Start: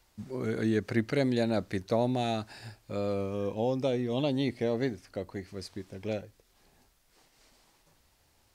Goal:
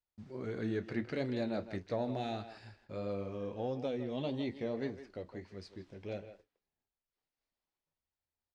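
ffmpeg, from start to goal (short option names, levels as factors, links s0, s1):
-filter_complex "[0:a]lowpass=4900,agate=range=0.0794:threshold=0.00126:ratio=16:detection=peak,flanger=delay=9.6:depth=4.5:regen=-55:speed=1.6:shape=triangular,asplit=2[s0][s1];[s1]asoftclip=type=tanh:threshold=0.0596,volume=0.631[s2];[s0][s2]amix=inputs=2:normalize=0,asplit=2[s3][s4];[s4]adelay=160,highpass=300,lowpass=3400,asoftclip=type=hard:threshold=0.0944,volume=0.282[s5];[s3][s5]amix=inputs=2:normalize=0,volume=0.422"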